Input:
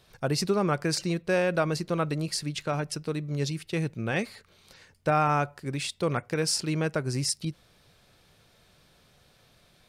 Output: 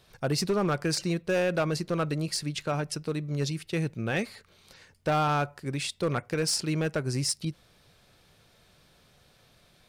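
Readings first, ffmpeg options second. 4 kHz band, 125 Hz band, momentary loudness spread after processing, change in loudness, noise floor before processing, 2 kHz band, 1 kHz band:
0.0 dB, -0.5 dB, 6 LU, -0.5 dB, -62 dBFS, -1.0 dB, -2.0 dB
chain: -af "asoftclip=type=hard:threshold=0.0944"

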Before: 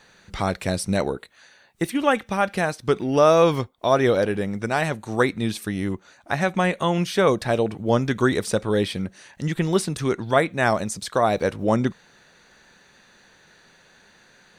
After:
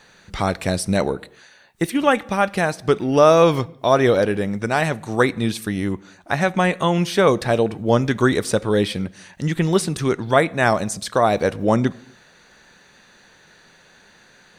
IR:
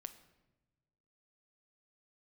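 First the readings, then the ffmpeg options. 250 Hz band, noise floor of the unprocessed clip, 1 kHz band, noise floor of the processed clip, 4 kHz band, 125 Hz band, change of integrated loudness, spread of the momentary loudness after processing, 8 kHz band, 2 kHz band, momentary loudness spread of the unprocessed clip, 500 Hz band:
+3.0 dB, -56 dBFS, +3.0 dB, -52 dBFS, +3.0 dB, +3.0 dB, +3.0 dB, 9 LU, +3.0 dB, +3.0 dB, 9 LU, +3.0 dB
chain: -filter_complex "[0:a]asplit=2[s0][s1];[1:a]atrim=start_sample=2205,afade=t=out:st=0.33:d=0.01,atrim=end_sample=14994[s2];[s1][s2]afir=irnorm=-1:irlink=0,volume=0.75[s3];[s0][s3]amix=inputs=2:normalize=0"

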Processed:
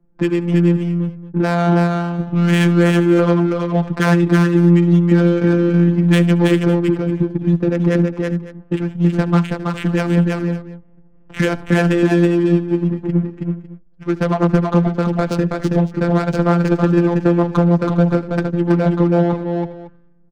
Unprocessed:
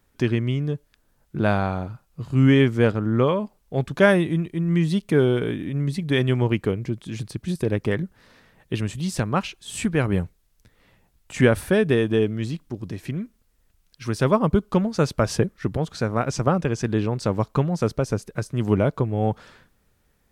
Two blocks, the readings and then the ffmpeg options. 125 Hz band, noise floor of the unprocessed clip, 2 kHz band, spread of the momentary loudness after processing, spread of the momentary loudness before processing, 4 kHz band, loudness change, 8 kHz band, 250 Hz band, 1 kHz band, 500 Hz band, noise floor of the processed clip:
+7.5 dB, -65 dBFS, +4.5 dB, 9 LU, 12 LU, +2.5 dB, +7.0 dB, no reading, +9.0 dB, +5.5 dB, +5.0 dB, -46 dBFS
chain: -filter_complex "[0:a]aecho=1:1:6.1:0.56,afftfilt=real='hypot(re,im)*cos(PI*b)':imag='0':win_size=1024:overlap=0.75,acrossover=split=350|3000[s0][s1][s2];[s0]acompressor=threshold=0.0501:ratio=3[s3];[s3][s1][s2]amix=inputs=3:normalize=0,acrossover=split=130|2700[s4][s5][s6];[s5]alimiter=limit=0.0944:level=0:latency=1:release=90[s7];[s4][s7][s6]amix=inputs=3:normalize=0,equalizer=f=250:t=o:w=0.67:g=6,equalizer=f=1600:t=o:w=0.67:g=4,equalizer=f=4000:t=o:w=0.67:g=-5,adynamicsmooth=sensitivity=3.5:basefreq=510,asplit=2[s8][s9];[s9]aecho=0:1:71|325|407|554:0.112|0.708|0.15|0.141[s10];[s8][s10]amix=inputs=2:normalize=0,volume=2.82"

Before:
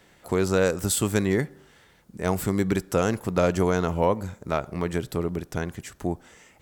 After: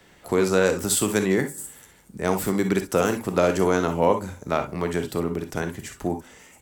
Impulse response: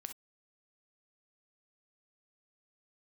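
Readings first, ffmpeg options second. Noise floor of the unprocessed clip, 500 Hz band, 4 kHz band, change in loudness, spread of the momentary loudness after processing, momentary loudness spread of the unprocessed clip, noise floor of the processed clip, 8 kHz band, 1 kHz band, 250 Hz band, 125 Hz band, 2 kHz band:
-58 dBFS, +2.5 dB, +3.0 dB, +2.0 dB, 10 LU, 10 LU, -54 dBFS, +3.5 dB, +3.0 dB, +1.5 dB, -2.0 dB, +3.0 dB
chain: -filter_complex "[1:a]atrim=start_sample=2205[s0];[0:a][s0]afir=irnorm=-1:irlink=0,acrossover=split=170|6800[s1][s2][s3];[s1]acompressor=threshold=0.00631:ratio=6[s4];[s3]aecho=1:1:576|672:0.168|0.299[s5];[s4][s2][s5]amix=inputs=3:normalize=0,volume=2.24"

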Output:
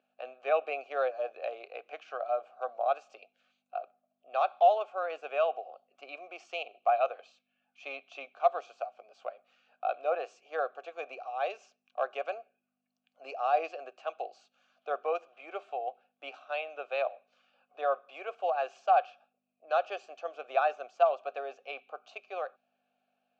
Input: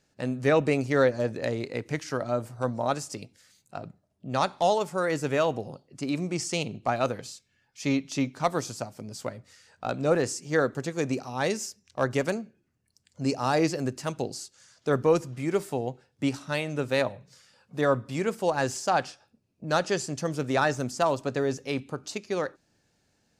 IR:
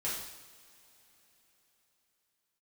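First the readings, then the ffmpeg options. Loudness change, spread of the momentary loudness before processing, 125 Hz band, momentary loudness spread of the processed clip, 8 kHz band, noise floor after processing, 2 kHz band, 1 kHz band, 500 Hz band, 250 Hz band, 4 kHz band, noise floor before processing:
-4.5 dB, 13 LU, under -40 dB, 16 LU, under -25 dB, -83 dBFS, -8.0 dB, 0.0 dB, -5.0 dB, -30.0 dB, -11.5 dB, -72 dBFS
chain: -filter_complex "[0:a]asplit=3[s0][s1][s2];[s0]bandpass=f=730:t=q:w=8,volume=1[s3];[s1]bandpass=f=1090:t=q:w=8,volume=0.501[s4];[s2]bandpass=f=2440:t=q:w=8,volume=0.355[s5];[s3][s4][s5]amix=inputs=3:normalize=0,aeval=exprs='val(0)+0.00158*(sin(2*PI*50*n/s)+sin(2*PI*2*50*n/s)/2+sin(2*PI*3*50*n/s)/3+sin(2*PI*4*50*n/s)/4+sin(2*PI*5*50*n/s)/5)':c=same,highpass=f=470:w=0.5412,highpass=f=470:w=1.3066,equalizer=f=1000:t=q:w=4:g=-8,equalizer=f=1500:t=q:w=4:g=5,equalizer=f=3100:t=q:w=4:g=4,equalizer=f=5100:t=q:w=4:g=-9,lowpass=f=5800:w=0.5412,lowpass=f=5800:w=1.3066,volume=2.11"

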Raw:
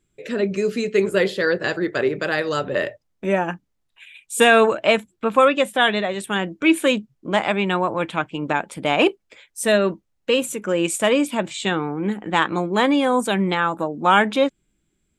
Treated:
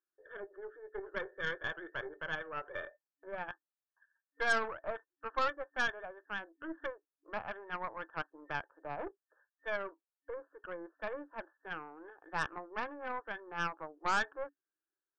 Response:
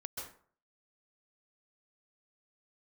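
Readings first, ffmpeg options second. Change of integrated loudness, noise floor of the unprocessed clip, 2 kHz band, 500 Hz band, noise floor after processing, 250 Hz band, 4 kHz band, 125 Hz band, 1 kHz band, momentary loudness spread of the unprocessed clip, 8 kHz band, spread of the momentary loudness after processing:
-19.0 dB, -71 dBFS, -14.5 dB, -23.0 dB, under -85 dBFS, -28.5 dB, -22.0 dB, -24.5 dB, -17.0 dB, 9 LU, -26.0 dB, 14 LU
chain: -af "aderivative,afftfilt=real='re*between(b*sr/4096,280,1800)':imag='im*between(b*sr/4096,280,1800)':win_size=4096:overlap=0.75,aeval=exprs='0.1*(cos(1*acos(clip(val(0)/0.1,-1,1)))-cos(1*PI/2))+0.0141*(cos(6*acos(clip(val(0)/0.1,-1,1)))-cos(6*PI/2))':c=same"

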